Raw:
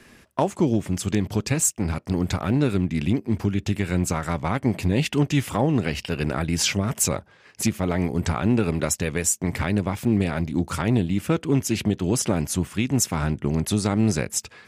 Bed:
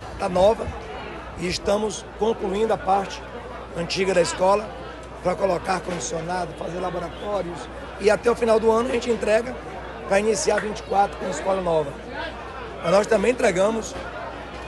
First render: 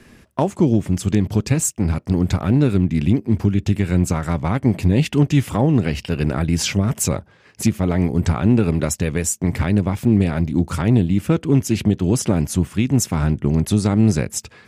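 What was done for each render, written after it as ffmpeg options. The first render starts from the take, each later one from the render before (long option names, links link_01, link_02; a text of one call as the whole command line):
ffmpeg -i in.wav -af "lowshelf=frequency=370:gain=7.5" out.wav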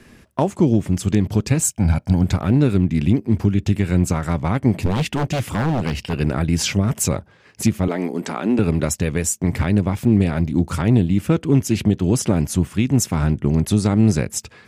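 ffmpeg -i in.wav -filter_complex "[0:a]asettb=1/sr,asplit=3[link_01][link_02][link_03];[link_01]atrim=end=1.634[link_04];[link_02]atrim=start=1.63:end=2.24,asetpts=PTS-STARTPTS,afade=type=in:duration=0.004:curve=qsin,afade=type=out:start_time=0.606:duration=0.004:curve=qsin,aecho=1:1:1.3:0.65,atrim=end_sample=26901[link_05];[link_03]atrim=start=2.236[link_06];[link_04][link_05]acrossfade=duration=0.004:curve1=hsin:curve2=qsin[link_07];[link_07][link_06]acrossfade=duration=0.004:curve1=qsin:curve2=hsin,asettb=1/sr,asplit=3[link_08][link_09][link_10];[link_08]atrim=end=4.864[link_11];[link_09]atrim=start=4.86:end=6.13,asetpts=PTS-STARTPTS,afade=type=in:duration=0.004:curve=qsin,afade=type=out:start_time=1.266:duration=0.004:curve=qsin,aeval=exprs='0.211*(abs(mod(val(0)/0.211+3,4)-2)-1)':channel_layout=same[link_12];[link_10]atrim=start=6.126[link_13];[link_11][link_12]acrossfade=duration=0.004:curve1=hsin:curve2=qsin[link_14];[link_14][link_13]acrossfade=duration=0.004:curve1=qsin:curve2=hsin,asettb=1/sr,asplit=3[link_15][link_16][link_17];[link_15]atrim=end=7.884[link_18];[link_16]atrim=start=7.88:end=8.59,asetpts=PTS-STARTPTS,afade=type=in:duration=0.004:curve=qsin,afade=type=out:start_time=0.706:duration=0.004:curve=qsin,highpass=frequency=230:width=0.5412,highpass=frequency=230:width=1.3066[link_19];[link_17]atrim=start=8.586[link_20];[link_18][link_19]acrossfade=duration=0.004:curve1=hsin:curve2=qsin[link_21];[link_21][link_20]acrossfade=duration=0.004:curve1=qsin:curve2=hsin" out.wav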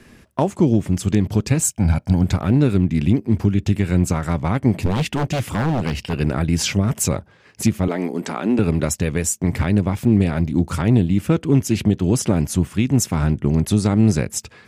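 ffmpeg -i in.wav -af anull out.wav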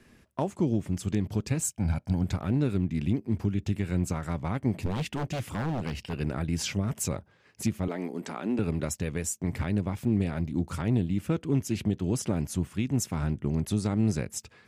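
ffmpeg -i in.wav -af "volume=-10.5dB" out.wav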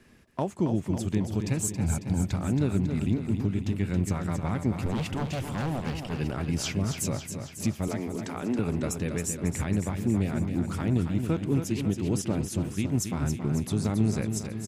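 ffmpeg -i in.wav -af "aecho=1:1:274|548|822|1096|1370|1644|1918:0.422|0.245|0.142|0.0823|0.0477|0.0277|0.0161" out.wav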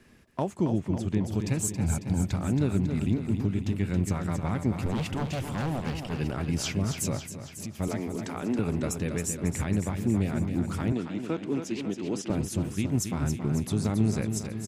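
ffmpeg -i in.wav -filter_complex "[0:a]asettb=1/sr,asplit=3[link_01][link_02][link_03];[link_01]atrim=end=0.784[link_04];[link_02]atrim=start=0.78:end=1.26,asetpts=PTS-STARTPTS,afade=type=in:duration=0.004:curve=qsin,afade=type=out:start_time=0.476:duration=0.004:curve=qsin,lowpass=frequency=3500:poles=1[link_05];[link_03]atrim=start=1.256[link_06];[link_04][link_05]acrossfade=duration=0.004:curve1=hsin:curve2=qsin[link_07];[link_07][link_06]acrossfade=duration=0.004:curve1=qsin:curve2=hsin,asettb=1/sr,asplit=3[link_08][link_09][link_10];[link_08]atrim=end=7.254[link_11];[link_09]atrim=start=7.25:end=7.75,asetpts=PTS-STARTPTS,afade=type=in:duration=0.004:curve=qsin,afade=type=out:start_time=0.496:duration=0.004:curve=qsin,acompressor=threshold=-36dB:ratio=3:attack=3.2:release=140:knee=1:detection=peak[link_12];[link_10]atrim=start=7.746[link_13];[link_11][link_12]acrossfade=duration=0.004:curve1=hsin:curve2=qsin[link_14];[link_14][link_13]acrossfade=duration=0.004:curve1=qsin:curve2=hsin,asettb=1/sr,asplit=3[link_15][link_16][link_17];[link_15]atrim=end=10.924[link_18];[link_16]atrim=start=10.92:end=12.3,asetpts=PTS-STARTPTS,afade=type=in:duration=0.004:curve=qsin,afade=type=out:start_time=1.376:duration=0.004:curve=qsin,acrossover=split=200 7400:gain=0.0891 1 0.158[link_19][link_20][link_21];[link_19][link_20][link_21]amix=inputs=3:normalize=0[link_22];[link_17]atrim=start=12.296[link_23];[link_18][link_22]acrossfade=duration=0.004:curve1=hsin:curve2=qsin[link_24];[link_24][link_23]acrossfade=duration=0.004:curve1=qsin:curve2=hsin" out.wav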